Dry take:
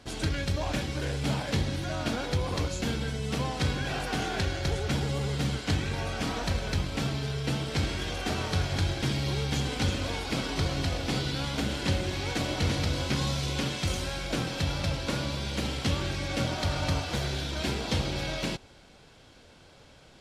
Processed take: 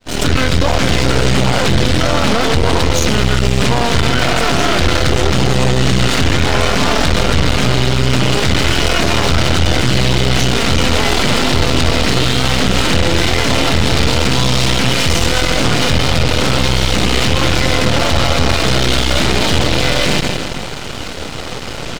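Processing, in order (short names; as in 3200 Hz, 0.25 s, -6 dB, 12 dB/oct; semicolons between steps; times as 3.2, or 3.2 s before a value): opening faded in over 0.59 s; notches 50/100 Hz; speed mistake 48 kHz file played as 44.1 kHz; brick-wall FIR low-pass 9400 Hz; feedback echo 0.16 s, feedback 46%, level -17 dB; half-wave rectifier; maximiser +35 dB; gain -1 dB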